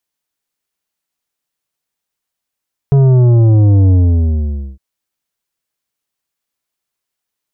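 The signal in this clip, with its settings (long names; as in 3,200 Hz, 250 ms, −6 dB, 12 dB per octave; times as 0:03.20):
bass drop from 140 Hz, over 1.86 s, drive 9.5 dB, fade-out 0.87 s, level −6.5 dB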